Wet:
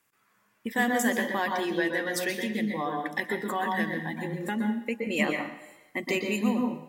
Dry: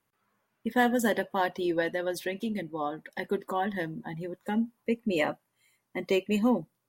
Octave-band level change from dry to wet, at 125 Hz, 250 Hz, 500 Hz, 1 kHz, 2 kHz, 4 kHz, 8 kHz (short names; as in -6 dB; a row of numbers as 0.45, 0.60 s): +2.0, +1.0, -1.5, +1.0, +5.0, +3.0, +7.0 dB